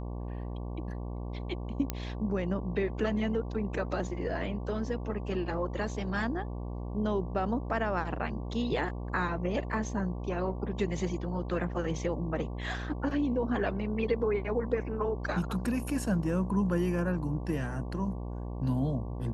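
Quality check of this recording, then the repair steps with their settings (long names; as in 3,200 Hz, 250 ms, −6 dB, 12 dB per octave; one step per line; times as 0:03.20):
mains buzz 60 Hz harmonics 19 −37 dBFS
0:01.90: click −15 dBFS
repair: click removal
hum removal 60 Hz, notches 19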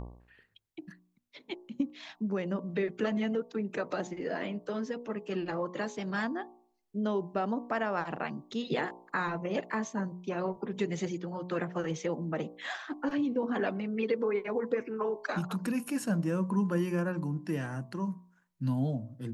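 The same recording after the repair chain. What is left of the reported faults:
none of them is left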